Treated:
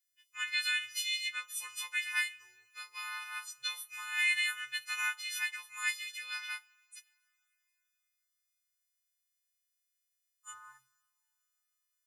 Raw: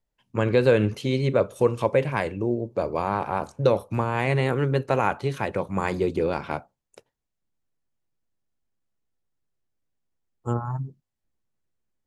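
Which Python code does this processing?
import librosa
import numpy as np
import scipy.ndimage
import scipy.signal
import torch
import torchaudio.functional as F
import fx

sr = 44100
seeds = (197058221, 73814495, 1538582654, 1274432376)

y = fx.freq_snap(x, sr, grid_st=3)
y = scipy.signal.sosfilt(scipy.signal.cheby2(4, 50, 670.0, 'highpass', fs=sr, output='sos'), y)
y = fx.rev_double_slope(y, sr, seeds[0], early_s=0.27, late_s=3.3, knee_db=-18, drr_db=17.5)
y = y * 10.0 ** (-3.0 / 20.0)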